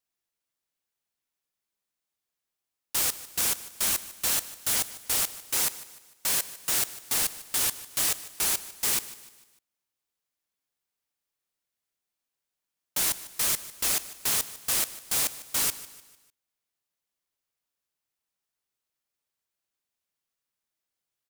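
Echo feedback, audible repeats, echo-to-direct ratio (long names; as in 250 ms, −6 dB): 43%, 3, −15.5 dB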